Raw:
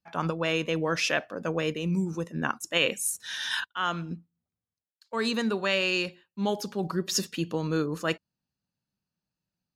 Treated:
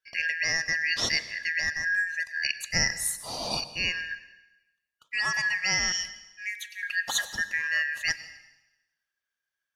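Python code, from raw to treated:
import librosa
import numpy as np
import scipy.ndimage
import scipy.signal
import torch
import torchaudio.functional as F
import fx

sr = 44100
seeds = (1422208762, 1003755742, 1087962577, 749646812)

y = fx.band_shuffle(x, sr, order='3142')
y = fx.cheby1_highpass(y, sr, hz=2500.0, order=3, at=(5.92, 6.83))
y = fx.rev_plate(y, sr, seeds[0], rt60_s=0.99, hf_ratio=1.0, predelay_ms=85, drr_db=14.0)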